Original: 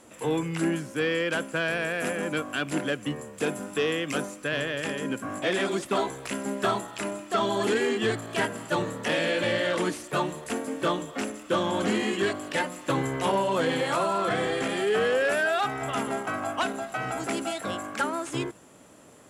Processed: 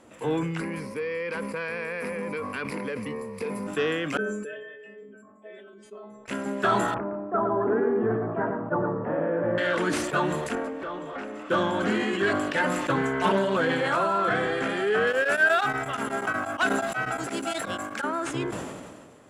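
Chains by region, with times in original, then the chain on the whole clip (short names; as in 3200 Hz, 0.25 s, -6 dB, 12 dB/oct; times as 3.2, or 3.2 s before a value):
0.6–3.67 ripple EQ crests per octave 0.89, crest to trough 14 dB + compressor 5:1, threshold -28 dBFS
4.17–6.28 formant sharpening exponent 2 + metallic resonator 210 Hz, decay 0.58 s, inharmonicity 0.002
6.94–9.58 LPF 1200 Hz 24 dB/oct + echo 0.113 s -6 dB
10.55–11.5 compressor, threshold -37 dBFS + overdrive pedal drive 19 dB, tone 1100 Hz, clips at -22 dBFS
12.96–13.57 comb 4.6 ms, depth 88% + Doppler distortion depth 0.13 ms
15.07–18.04 high shelf 4100 Hz +9.5 dB + modulation noise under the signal 27 dB + beating tremolo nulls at 8.3 Hz
whole clip: dynamic EQ 1500 Hz, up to +8 dB, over -46 dBFS, Q 3.3; LPF 3100 Hz 6 dB/oct; sustainer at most 33 dB/s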